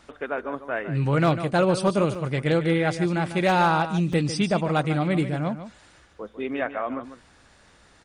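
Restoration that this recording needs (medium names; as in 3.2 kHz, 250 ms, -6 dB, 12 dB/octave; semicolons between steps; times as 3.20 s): clip repair -12.5 dBFS; interpolate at 2.15/4.13 s, 3.7 ms; inverse comb 148 ms -11.5 dB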